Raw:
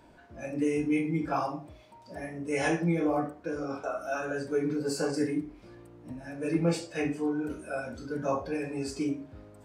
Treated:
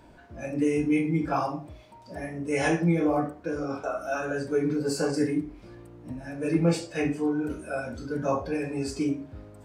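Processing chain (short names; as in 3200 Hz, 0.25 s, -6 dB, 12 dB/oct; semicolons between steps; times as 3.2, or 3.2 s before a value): low shelf 140 Hz +5 dB; gain +2.5 dB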